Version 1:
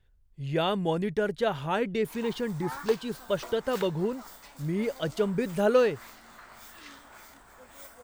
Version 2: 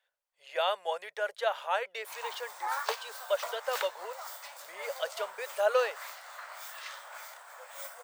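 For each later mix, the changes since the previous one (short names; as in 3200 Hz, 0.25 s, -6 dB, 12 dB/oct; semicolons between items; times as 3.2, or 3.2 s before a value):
background +5.5 dB; master: add elliptic high-pass 550 Hz, stop band 50 dB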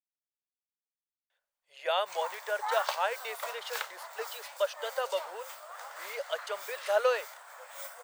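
speech: entry +1.30 s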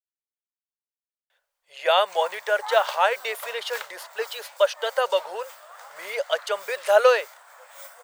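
speech +10.0 dB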